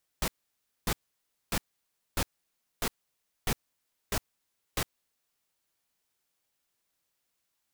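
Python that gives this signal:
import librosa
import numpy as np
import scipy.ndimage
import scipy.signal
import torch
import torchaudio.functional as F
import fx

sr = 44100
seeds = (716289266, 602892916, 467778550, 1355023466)

y = fx.noise_burst(sr, seeds[0], colour='pink', on_s=0.06, off_s=0.59, bursts=8, level_db=-28.5)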